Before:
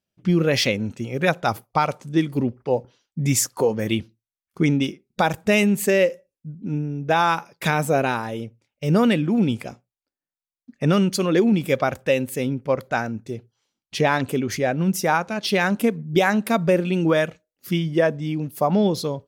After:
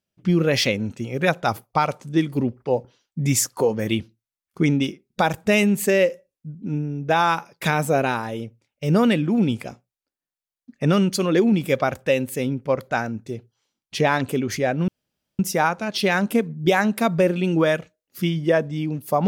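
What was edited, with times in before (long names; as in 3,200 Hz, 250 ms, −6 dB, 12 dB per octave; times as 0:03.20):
0:14.88: splice in room tone 0.51 s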